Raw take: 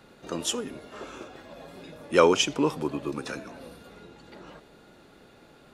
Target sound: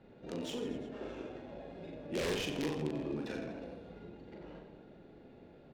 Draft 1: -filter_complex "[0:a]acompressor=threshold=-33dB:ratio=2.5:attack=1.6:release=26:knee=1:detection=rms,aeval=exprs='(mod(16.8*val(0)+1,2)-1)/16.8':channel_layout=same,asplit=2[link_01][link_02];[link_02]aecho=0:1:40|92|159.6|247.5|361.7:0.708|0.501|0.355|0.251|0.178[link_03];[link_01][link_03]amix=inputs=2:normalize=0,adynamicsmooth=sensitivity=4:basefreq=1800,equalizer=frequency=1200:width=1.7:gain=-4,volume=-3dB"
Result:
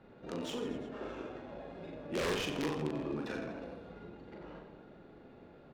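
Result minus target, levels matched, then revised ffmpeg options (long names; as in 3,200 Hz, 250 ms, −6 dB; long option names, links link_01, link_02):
1,000 Hz band +3.5 dB
-filter_complex "[0:a]acompressor=threshold=-33dB:ratio=2.5:attack=1.6:release=26:knee=1:detection=rms,aeval=exprs='(mod(16.8*val(0)+1,2)-1)/16.8':channel_layout=same,asplit=2[link_01][link_02];[link_02]aecho=0:1:40|92|159.6|247.5|361.7:0.708|0.501|0.355|0.251|0.178[link_03];[link_01][link_03]amix=inputs=2:normalize=0,adynamicsmooth=sensitivity=4:basefreq=1800,equalizer=frequency=1200:width=1.7:gain=-11.5,volume=-3dB"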